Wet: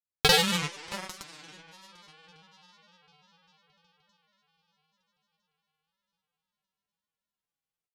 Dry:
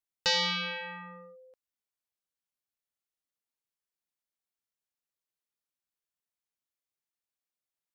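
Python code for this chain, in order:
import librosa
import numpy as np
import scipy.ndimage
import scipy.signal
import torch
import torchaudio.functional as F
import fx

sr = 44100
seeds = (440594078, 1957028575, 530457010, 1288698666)

p1 = fx.low_shelf(x, sr, hz=300.0, db=10.0)
p2 = fx.rider(p1, sr, range_db=10, speed_s=0.5)
p3 = p1 + (p2 * librosa.db_to_amplitude(2.0))
p4 = fx.echo_heads(p3, sr, ms=291, heads='second and third', feedback_pct=50, wet_db=-11)
p5 = fx.cheby_harmonics(p4, sr, harmonics=(5, 6, 7), levels_db=(-42, -23, -15), full_scale_db=-10.0)
y = fx.granulator(p5, sr, seeds[0], grain_ms=100.0, per_s=20.0, spray_ms=100.0, spread_st=3)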